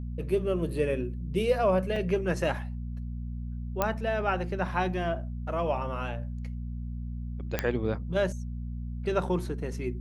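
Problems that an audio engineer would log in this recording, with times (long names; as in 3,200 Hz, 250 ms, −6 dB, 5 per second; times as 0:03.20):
mains hum 60 Hz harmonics 4 −35 dBFS
0:01.96: drop-out 3.6 ms
0:03.82: click −11 dBFS
0:07.59: click −11 dBFS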